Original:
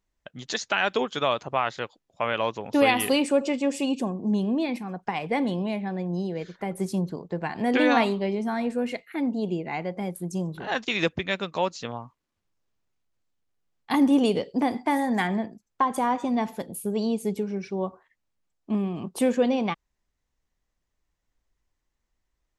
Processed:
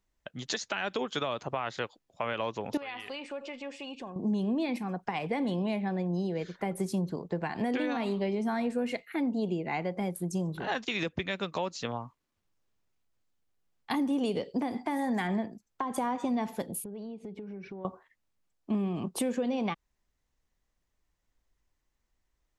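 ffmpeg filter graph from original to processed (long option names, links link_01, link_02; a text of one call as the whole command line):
ffmpeg -i in.wav -filter_complex "[0:a]asettb=1/sr,asplit=3[link_01][link_02][link_03];[link_01]atrim=end=2.774[link_04];[link_02]atrim=start=2.77:end=4.16,asetpts=PTS-STARTPTS,afade=type=in:duration=0.004:curve=qsin,afade=type=out:start_time=1.386:duration=0.004:curve=qsin,equalizer=frequency=210:width=0.39:gain=-14,acompressor=threshold=-37dB:ratio=3:attack=3.2:release=140:knee=1:detection=peak,lowpass=3200[link_05];[link_03]atrim=start=4.156[link_06];[link_04][link_05]acrossfade=duration=0.004:curve1=hsin:curve2=qsin[link_07];[link_07][link_06]acrossfade=duration=0.004:curve1=qsin:curve2=hsin,asettb=1/sr,asplit=3[link_08][link_09][link_10];[link_08]atrim=end=16.844[link_11];[link_09]atrim=start=16.84:end=17.85,asetpts=PTS-STARTPTS,afade=type=in:duration=0.004:curve=qsin,afade=type=out:start_time=1.006:duration=0.004:curve=qsin,lowpass=2600,acompressor=threshold=-38dB:ratio=10:attack=3.2:release=140:knee=1:detection=peak[link_12];[link_10]atrim=start=17.846[link_13];[link_11][link_12]acrossfade=duration=0.004:curve1=hsin:curve2=qsin[link_14];[link_14][link_13]acrossfade=duration=0.004:curve1=qsin:curve2=hsin,acrossover=split=410[link_15][link_16];[link_16]acompressor=threshold=-24dB:ratio=6[link_17];[link_15][link_17]amix=inputs=2:normalize=0,alimiter=limit=-18dB:level=0:latency=1:release=219,acompressor=threshold=-28dB:ratio=2.5" out.wav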